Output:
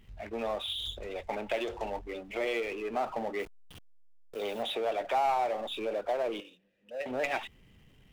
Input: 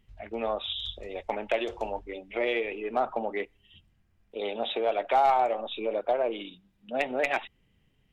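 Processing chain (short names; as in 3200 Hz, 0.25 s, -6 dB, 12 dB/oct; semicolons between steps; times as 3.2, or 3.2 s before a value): 3.39–4.63 level-crossing sampler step -48 dBFS; 6.4–7.06 vowel filter e; power-law curve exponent 0.7; gain -6.5 dB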